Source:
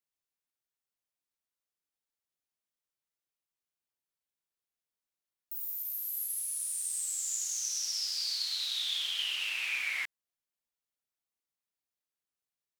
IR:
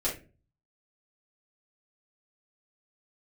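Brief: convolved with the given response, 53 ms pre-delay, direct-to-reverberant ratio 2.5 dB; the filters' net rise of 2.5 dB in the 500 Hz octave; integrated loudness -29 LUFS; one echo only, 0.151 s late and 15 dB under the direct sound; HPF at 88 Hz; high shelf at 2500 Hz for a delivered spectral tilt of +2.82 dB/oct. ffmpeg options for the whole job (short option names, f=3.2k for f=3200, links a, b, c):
-filter_complex "[0:a]highpass=88,equalizer=f=500:t=o:g=3.5,highshelf=f=2.5k:g=-5.5,aecho=1:1:151:0.178,asplit=2[a][b];[1:a]atrim=start_sample=2205,adelay=53[c];[b][c]afir=irnorm=-1:irlink=0,volume=-9.5dB[d];[a][d]amix=inputs=2:normalize=0,volume=5.5dB"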